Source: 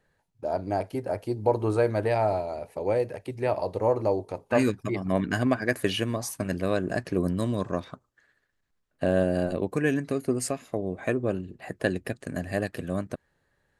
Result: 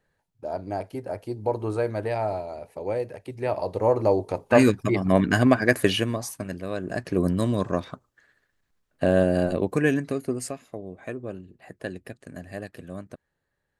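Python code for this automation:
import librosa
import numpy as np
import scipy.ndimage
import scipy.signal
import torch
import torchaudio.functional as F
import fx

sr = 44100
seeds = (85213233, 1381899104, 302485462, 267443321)

y = fx.gain(x, sr, db=fx.line((3.2, -2.5), (4.32, 6.0), (5.81, 6.0), (6.65, -6.0), (7.23, 3.5), (9.84, 3.5), (10.85, -7.5)))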